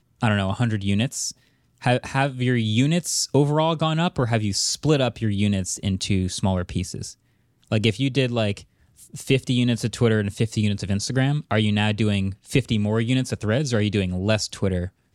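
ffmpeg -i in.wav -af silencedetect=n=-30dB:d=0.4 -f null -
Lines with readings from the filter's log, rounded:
silence_start: 1.31
silence_end: 1.84 | silence_duration: 0.53
silence_start: 7.11
silence_end: 7.72 | silence_duration: 0.61
silence_start: 8.58
silence_end: 9.15 | silence_duration: 0.57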